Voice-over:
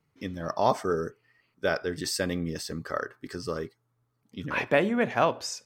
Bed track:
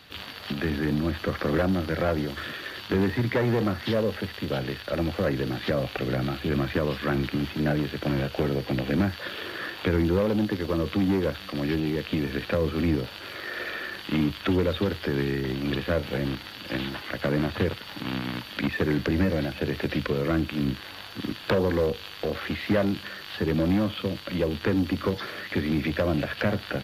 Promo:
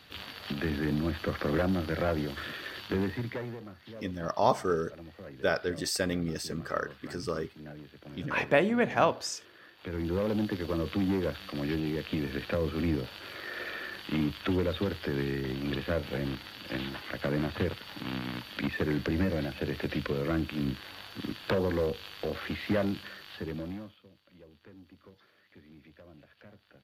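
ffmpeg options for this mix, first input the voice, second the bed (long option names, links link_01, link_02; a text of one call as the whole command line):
ffmpeg -i stem1.wav -i stem2.wav -filter_complex "[0:a]adelay=3800,volume=-1dB[link_01];[1:a]volume=11.5dB,afade=type=out:start_time=2.77:duration=0.84:silence=0.149624,afade=type=in:start_time=9.77:duration=0.52:silence=0.16788,afade=type=out:start_time=22.85:duration=1.14:silence=0.0630957[link_02];[link_01][link_02]amix=inputs=2:normalize=0" out.wav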